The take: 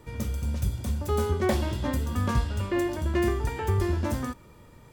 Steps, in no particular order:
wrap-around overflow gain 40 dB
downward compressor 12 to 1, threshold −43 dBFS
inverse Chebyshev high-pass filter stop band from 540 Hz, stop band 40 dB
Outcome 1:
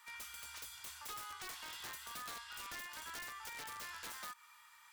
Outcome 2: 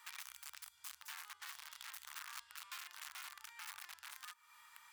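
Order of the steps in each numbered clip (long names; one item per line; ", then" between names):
inverse Chebyshev high-pass filter, then downward compressor, then wrap-around overflow
downward compressor, then wrap-around overflow, then inverse Chebyshev high-pass filter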